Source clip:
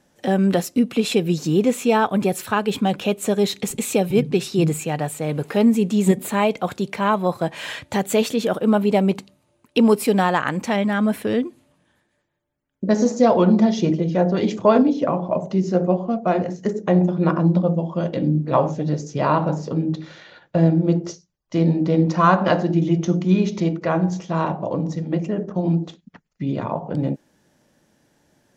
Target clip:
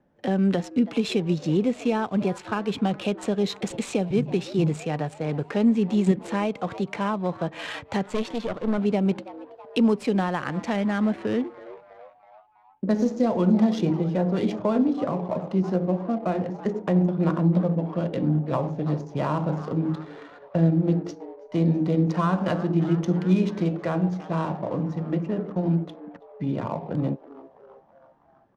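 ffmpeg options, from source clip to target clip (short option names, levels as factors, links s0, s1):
-filter_complex "[0:a]asettb=1/sr,asplit=3[s0][s1][s2];[s0]atrim=end=8.064[s3];[s1]atrim=start=8.06:end=8.78,asetpts=PTS-STARTPTS,afade=t=in:d=0.004:c=qsin,afade=t=out:st=0.716:d=0.004:c=qsin,aeval=exprs='(tanh(5.01*val(0)+0.75)-tanh(0.75))/5.01':c=same[s4];[s2]atrim=start=8.776[s5];[s3][s4]acrossfade=d=0.004:c1=hsin:c2=qsin[s6];[s6][s5]acrossfade=d=0.004:c1=qsin:c2=hsin,asplit=6[s7][s8][s9][s10][s11][s12];[s8]adelay=326,afreqshift=130,volume=0.1[s13];[s9]adelay=652,afreqshift=260,volume=0.0582[s14];[s10]adelay=978,afreqshift=390,volume=0.0335[s15];[s11]adelay=1304,afreqshift=520,volume=0.0195[s16];[s12]adelay=1630,afreqshift=650,volume=0.0114[s17];[s7][s13][s14][s15][s16][s17]amix=inputs=6:normalize=0,adynamicsmooth=sensitivity=7:basefreq=1500,lowpass=8200,acrossover=split=290[s18][s19];[s19]acompressor=threshold=0.0708:ratio=3[s20];[s18][s20]amix=inputs=2:normalize=0,volume=0.708"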